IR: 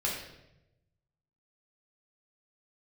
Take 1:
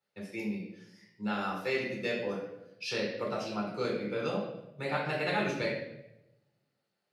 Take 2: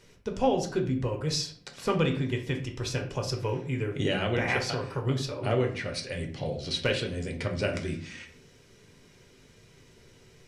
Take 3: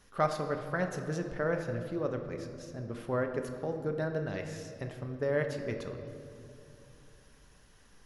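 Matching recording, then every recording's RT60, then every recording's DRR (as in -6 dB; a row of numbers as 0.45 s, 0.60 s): 1; 0.90 s, 0.50 s, 2.8 s; -3.0 dB, 2.5 dB, 4.5 dB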